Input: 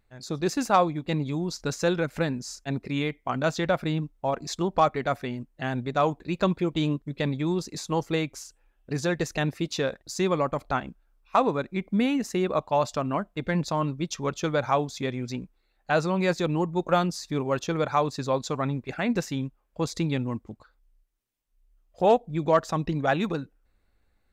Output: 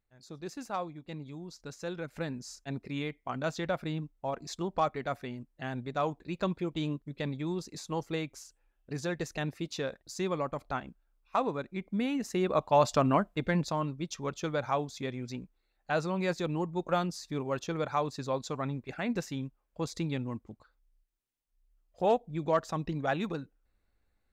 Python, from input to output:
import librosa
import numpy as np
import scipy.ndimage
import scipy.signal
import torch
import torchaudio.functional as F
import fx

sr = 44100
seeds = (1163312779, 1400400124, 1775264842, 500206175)

y = fx.gain(x, sr, db=fx.line((1.79, -14.5), (2.38, -7.5), (12.03, -7.5), (13.05, 3.0), (13.89, -6.5)))